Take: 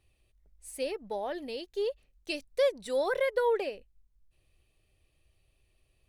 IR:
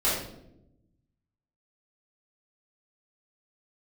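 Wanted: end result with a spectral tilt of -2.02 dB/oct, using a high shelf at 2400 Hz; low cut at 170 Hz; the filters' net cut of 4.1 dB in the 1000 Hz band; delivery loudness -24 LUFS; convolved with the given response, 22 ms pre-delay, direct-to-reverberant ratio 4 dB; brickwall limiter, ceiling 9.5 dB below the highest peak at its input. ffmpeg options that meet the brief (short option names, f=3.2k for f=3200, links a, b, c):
-filter_complex "[0:a]highpass=170,equalizer=f=1k:t=o:g=-5.5,highshelf=f=2.4k:g=4,alimiter=level_in=2.5dB:limit=-24dB:level=0:latency=1,volume=-2.5dB,asplit=2[a][b];[1:a]atrim=start_sample=2205,adelay=22[c];[b][c]afir=irnorm=-1:irlink=0,volume=-16.5dB[d];[a][d]amix=inputs=2:normalize=0,volume=11dB"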